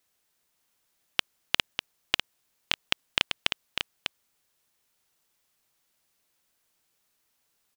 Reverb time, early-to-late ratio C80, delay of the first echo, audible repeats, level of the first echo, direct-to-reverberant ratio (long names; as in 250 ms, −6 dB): no reverb audible, no reverb audible, 598 ms, 1, −6.5 dB, no reverb audible